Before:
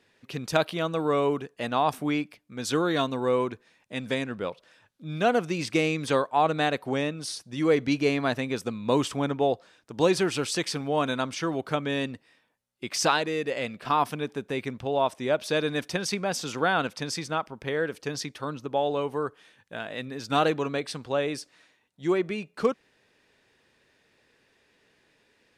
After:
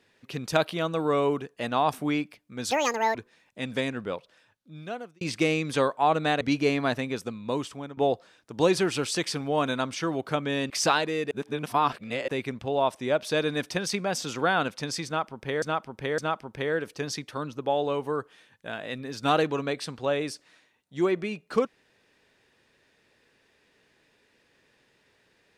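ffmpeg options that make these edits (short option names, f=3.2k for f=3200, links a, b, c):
-filter_complex "[0:a]asplit=11[a][b][c][d][e][f][g][h][i][j][k];[a]atrim=end=2.714[l];[b]atrim=start=2.71:end=3.49,asetpts=PTS-STARTPTS,asetrate=78057,aresample=44100[m];[c]atrim=start=3.486:end=5.55,asetpts=PTS-STARTPTS,afade=t=out:st=0.874:d=1.19[n];[d]atrim=start=5.55:end=6.752,asetpts=PTS-STARTPTS,afade=t=in:d=0.004:c=hsin[o];[e]atrim=start=7.808:end=9.37,asetpts=PTS-STARTPTS,afade=t=out:st=0.512:d=1.05:silence=0.188365[p];[f]atrim=start=9.37:end=12.102,asetpts=PTS-STARTPTS,afade=t=in:d=0.004:c=hsin:silence=0.188365[q];[g]atrim=start=12.888:end=13.502[r];[h]atrim=start=13.498:end=14.472,asetpts=PTS-STARTPTS,areverse[s];[i]atrim=start=14.468:end=17.812[t];[j]atrim=start=17.248:end=17.812[u];[k]atrim=start=17.248[v];[l][m]acrossfade=d=0.004:c1=hsin:c2=hsin[w];[n][o]concat=n=2:v=0:a=1[x];[w][x]acrossfade=d=0.004:c1=hsin:c2=hsin[y];[p][q]concat=n=2:v=0:a=1[z];[y][z]acrossfade=d=0.004:c1=hsin:c2=hsin[aa];[aa][r]acrossfade=d=0.004:c1=hsin:c2=hsin[ab];[ab][s]acrossfade=d=0.004:c1=hsin:c2=hsin[ac];[ac][t]acrossfade=d=0.004:c1=hsin:c2=hsin[ad];[ad][u]acrossfade=d=0.004:c1=hsin:c2=hsin[ae];[ae][v]acrossfade=d=0.004:c1=hsin:c2=hsin"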